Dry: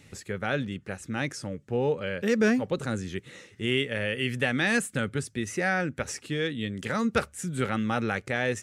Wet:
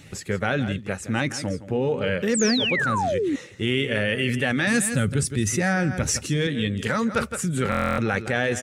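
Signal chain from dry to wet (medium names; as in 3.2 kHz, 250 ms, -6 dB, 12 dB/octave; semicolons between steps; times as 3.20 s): coarse spectral quantiser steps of 15 dB; on a send: delay 165 ms -14.5 dB; 2.34–3.36 s: on the sum: painted sound fall 260–8600 Hz -28 dBFS; 4.67–6.47 s: tone controls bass +9 dB, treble +6 dB; in parallel at -0.5 dB: compressor with a negative ratio -31 dBFS, ratio -1; on the sum: buffer glitch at 7.70 s, samples 1024, times 11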